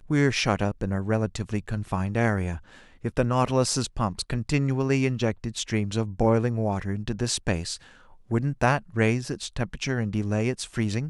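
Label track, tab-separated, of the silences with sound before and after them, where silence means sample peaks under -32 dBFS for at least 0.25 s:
2.570000	3.050000	silence
7.760000	8.310000	silence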